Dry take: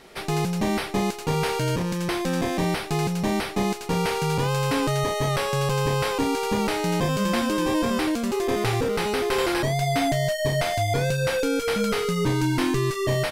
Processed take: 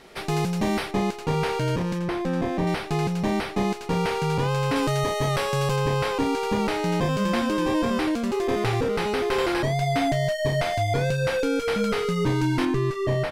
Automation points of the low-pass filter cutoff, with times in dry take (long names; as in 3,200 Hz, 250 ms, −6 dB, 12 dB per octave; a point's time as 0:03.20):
low-pass filter 6 dB per octave
8,600 Hz
from 0:00.91 3,400 Hz
from 0:01.99 1,400 Hz
from 0:02.67 3,800 Hz
from 0:04.76 9,700 Hz
from 0:05.76 4,100 Hz
from 0:12.65 1,600 Hz